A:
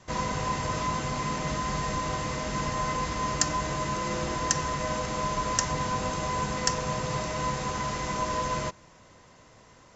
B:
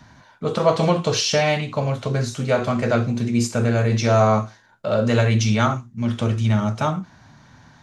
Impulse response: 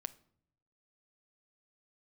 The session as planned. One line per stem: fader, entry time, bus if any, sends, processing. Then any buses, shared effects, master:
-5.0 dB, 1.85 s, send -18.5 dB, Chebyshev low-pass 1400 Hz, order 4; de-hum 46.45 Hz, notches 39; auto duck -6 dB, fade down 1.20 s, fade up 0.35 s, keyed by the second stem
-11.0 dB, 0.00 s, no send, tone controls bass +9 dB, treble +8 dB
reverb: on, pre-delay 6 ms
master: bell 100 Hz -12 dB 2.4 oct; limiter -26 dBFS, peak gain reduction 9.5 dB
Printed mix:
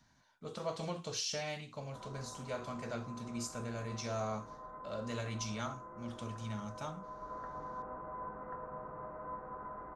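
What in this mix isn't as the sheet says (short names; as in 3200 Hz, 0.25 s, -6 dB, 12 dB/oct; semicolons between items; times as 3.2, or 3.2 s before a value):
stem A -5.0 dB -> -11.5 dB; stem B -11.0 dB -> -20.5 dB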